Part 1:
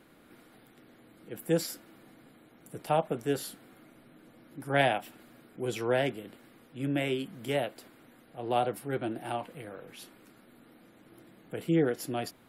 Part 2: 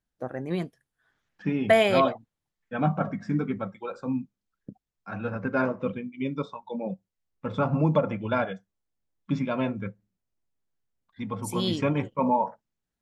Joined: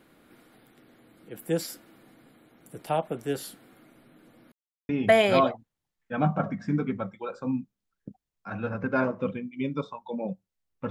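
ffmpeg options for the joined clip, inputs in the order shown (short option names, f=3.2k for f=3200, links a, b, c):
-filter_complex "[0:a]apad=whole_dur=10.9,atrim=end=10.9,asplit=2[a][b];[a]atrim=end=4.52,asetpts=PTS-STARTPTS,afade=t=out:st=4.516:d=0.004:c=hsin[c];[b]atrim=start=4.52:end=4.89,asetpts=PTS-STARTPTS,volume=0[d];[1:a]atrim=start=1.5:end=7.51,asetpts=PTS-STARTPTS,afade=t=in:d=0.004:c=hsin[e];[c][d][e]concat=n=3:v=0:a=1"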